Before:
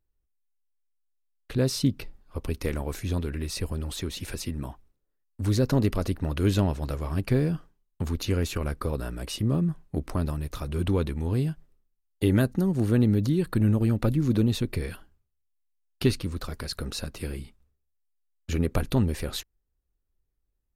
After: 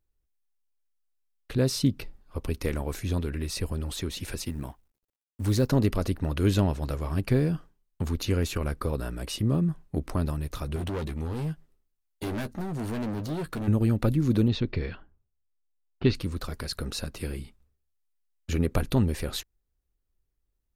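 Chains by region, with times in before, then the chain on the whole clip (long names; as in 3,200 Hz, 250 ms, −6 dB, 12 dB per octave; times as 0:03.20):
0:04.44–0:05.70: mu-law and A-law mismatch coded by A + high-shelf EQ 10,000 Hz +4.5 dB
0:10.76–0:13.68: low-shelf EQ 160 Hz −5 dB + hard clipping −29.5 dBFS + double-tracking delay 13 ms −9 dB
0:14.48–0:16.15: low-pass filter 4,900 Hz 24 dB per octave + low-pass that shuts in the quiet parts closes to 860 Hz, open at −22.5 dBFS
whole clip: no processing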